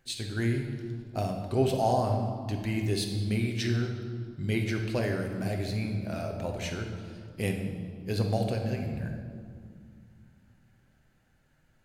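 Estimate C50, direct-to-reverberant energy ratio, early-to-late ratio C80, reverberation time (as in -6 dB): 4.5 dB, 2.5 dB, 6.5 dB, 2.2 s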